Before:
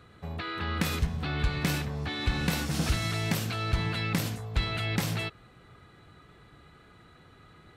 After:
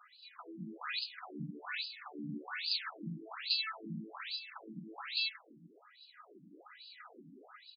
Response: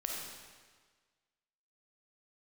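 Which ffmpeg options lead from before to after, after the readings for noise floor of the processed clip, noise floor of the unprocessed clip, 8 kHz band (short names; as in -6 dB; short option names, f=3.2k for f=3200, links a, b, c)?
-63 dBFS, -56 dBFS, under -40 dB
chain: -filter_complex "[0:a]highpass=96,acrossover=split=290|1000|7200[a][b][c][d];[b]acompressor=threshold=-58dB:ratio=6[e];[a][e][c][d]amix=inputs=4:normalize=0,aexciter=amount=15.1:drive=6.2:freq=4.9k,dynaudnorm=f=540:g=5:m=12.5dB,aecho=1:1:369|529:0.2|0.126,afftfilt=real='re*between(b*sr/1024,220*pow(3600/220,0.5+0.5*sin(2*PI*1.2*pts/sr))/1.41,220*pow(3600/220,0.5+0.5*sin(2*PI*1.2*pts/sr))*1.41)':imag='im*between(b*sr/1024,220*pow(3600/220,0.5+0.5*sin(2*PI*1.2*pts/sr))/1.41,220*pow(3600/220,0.5+0.5*sin(2*PI*1.2*pts/sr))*1.41)':win_size=1024:overlap=0.75,volume=1.5dB"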